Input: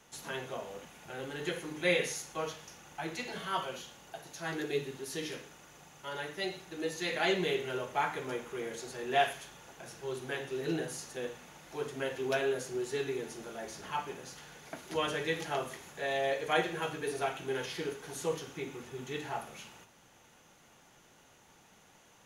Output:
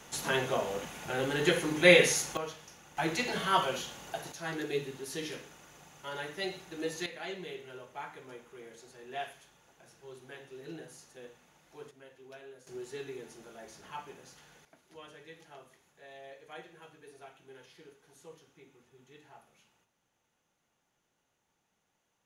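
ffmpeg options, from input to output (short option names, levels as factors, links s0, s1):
-af "asetnsamples=n=441:p=0,asendcmd='2.37 volume volume -2dB;2.97 volume volume 7dB;4.32 volume volume 0dB;7.06 volume volume -11dB;11.91 volume volume -19dB;12.67 volume volume -7dB;14.65 volume volume -18dB',volume=2.82"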